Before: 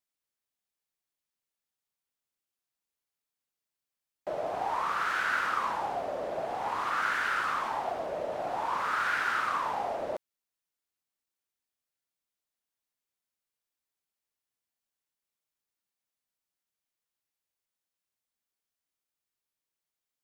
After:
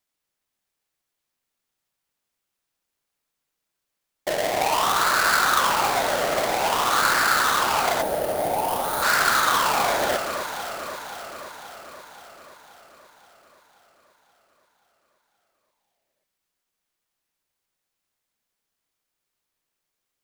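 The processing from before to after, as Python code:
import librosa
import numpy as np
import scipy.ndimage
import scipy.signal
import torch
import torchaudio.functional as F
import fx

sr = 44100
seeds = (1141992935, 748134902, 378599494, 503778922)

y = fx.halfwave_hold(x, sr)
y = fx.echo_alternate(y, sr, ms=264, hz=2100.0, feedback_pct=77, wet_db=-6.5)
y = fx.spec_box(y, sr, start_s=8.02, length_s=1.01, low_hz=940.0, high_hz=8600.0, gain_db=-10)
y = F.gain(torch.from_numpy(y), 5.5).numpy()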